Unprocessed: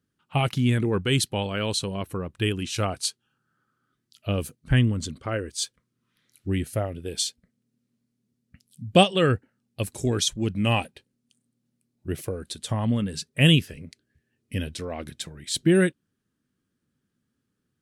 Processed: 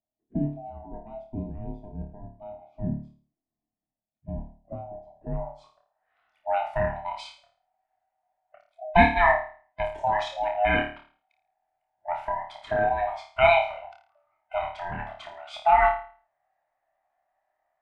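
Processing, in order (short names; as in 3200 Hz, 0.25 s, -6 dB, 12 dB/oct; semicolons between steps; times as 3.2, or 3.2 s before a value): band-swap scrambler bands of 500 Hz; low-pass sweep 240 Hz -> 1800 Hz, 5.05–6.09; flutter echo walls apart 4.7 m, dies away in 0.42 s; gain -3 dB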